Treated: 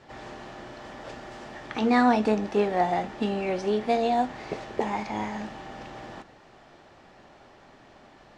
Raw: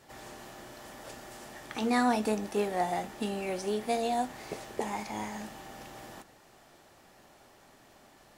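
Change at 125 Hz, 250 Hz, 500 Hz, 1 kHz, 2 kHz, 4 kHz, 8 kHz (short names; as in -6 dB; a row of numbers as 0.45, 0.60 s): +6.5, +6.5, +6.0, +6.0, +5.0, +2.5, -6.5 dB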